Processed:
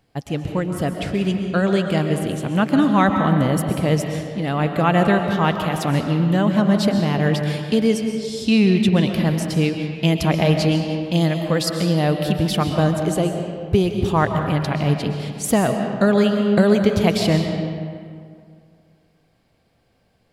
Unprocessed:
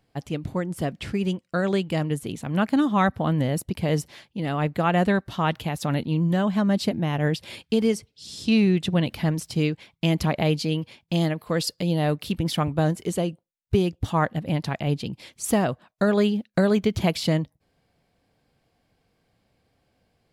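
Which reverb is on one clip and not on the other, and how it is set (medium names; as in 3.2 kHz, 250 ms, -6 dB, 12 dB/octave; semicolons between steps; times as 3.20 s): algorithmic reverb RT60 2.2 s, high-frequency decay 0.6×, pre-delay 90 ms, DRR 4.5 dB; trim +4 dB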